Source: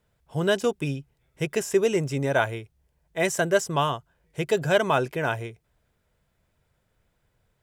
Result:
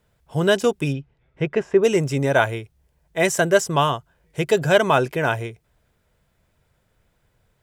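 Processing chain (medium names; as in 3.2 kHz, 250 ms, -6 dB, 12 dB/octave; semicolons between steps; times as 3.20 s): 0.92–1.83 s: low-pass 3.9 kHz -> 1.6 kHz 12 dB/octave; trim +5 dB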